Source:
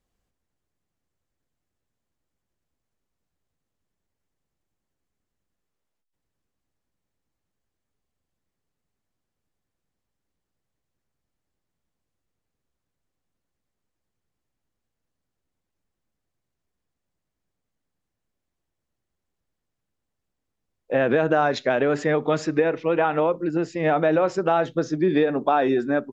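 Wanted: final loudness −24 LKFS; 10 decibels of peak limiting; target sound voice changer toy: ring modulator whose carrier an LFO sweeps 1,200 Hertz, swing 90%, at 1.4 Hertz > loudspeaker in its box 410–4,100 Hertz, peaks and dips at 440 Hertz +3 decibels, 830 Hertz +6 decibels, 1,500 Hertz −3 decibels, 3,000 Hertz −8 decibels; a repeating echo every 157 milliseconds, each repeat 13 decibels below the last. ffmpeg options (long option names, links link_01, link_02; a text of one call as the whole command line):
ffmpeg -i in.wav -af "alimiter=limit=-17dB:level=0:latency=1,aecho=1:1:157|314|471:0.224|0.0493|0.0108,aeval=exprs='val(0)*sin(2*PI*1200*n/s+1200*0.9/1.4*sin(2*PI*1.4*n/s))':channel_layout=same,highpass=410,equalizer=frequency=440:width_type=q:width=4:gain=3,equalizer=frequency=830:width_type=q:width=4:gain=6,equalizer=frequency=1500:width_type=q:width=4:gain=-3,equalizer=frequency=3000:width_type=q:width=4:gain=-8,lowpass=frequency=4100:width=0.5412,lowpass=frequency=4100:width=1.3066,volume=5.5dB" out.wav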